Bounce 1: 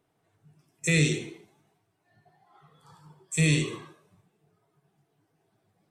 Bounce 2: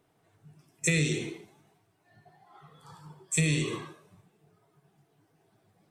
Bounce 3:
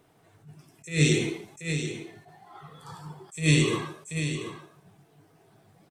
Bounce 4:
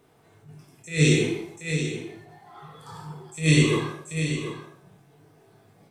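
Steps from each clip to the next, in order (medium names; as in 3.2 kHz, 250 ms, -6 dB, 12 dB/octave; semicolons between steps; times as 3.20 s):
compression 6:1, threshold -27 dBFS, peak gain reduction 9 dB; trim +4 dB
delay 734 ms -9.5 dB; attacks held to a fixed rise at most 180 dB/s; trim +7.5 dB
reverberation RT60 0.50 s, pre-delay 19 ms, DRR 1 dB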